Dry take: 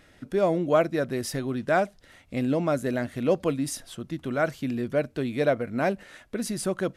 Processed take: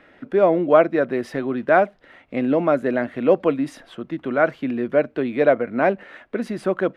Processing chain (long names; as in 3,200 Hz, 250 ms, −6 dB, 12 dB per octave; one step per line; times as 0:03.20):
three-way crossover with the lows and the highs turned down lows −15 dB, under 210 Hz, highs −24 dB, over 2,900 Hz
level +7.5 dB